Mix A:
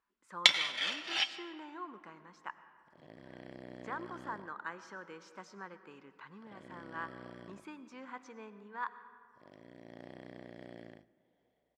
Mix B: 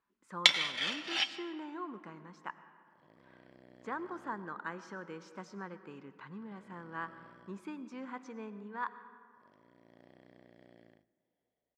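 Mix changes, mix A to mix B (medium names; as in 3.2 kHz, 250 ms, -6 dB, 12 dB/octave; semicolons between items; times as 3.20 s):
speech: add bass shelf 340 Hz +11 dB; second sound -10.0 dB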